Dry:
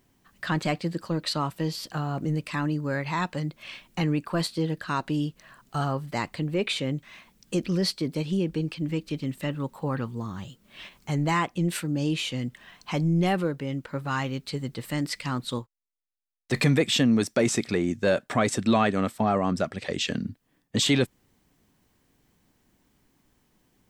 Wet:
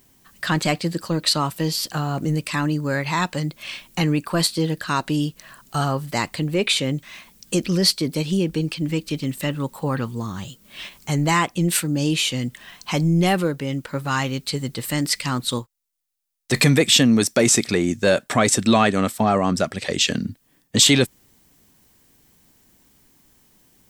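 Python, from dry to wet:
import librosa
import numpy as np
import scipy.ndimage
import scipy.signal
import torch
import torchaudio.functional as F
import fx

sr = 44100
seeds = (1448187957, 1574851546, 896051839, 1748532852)

y = fx.high_shelf(x, sr, hz=4400.0, db=11.0)
y = F.gain(torch.from_numpy(y), 5.0).numpy()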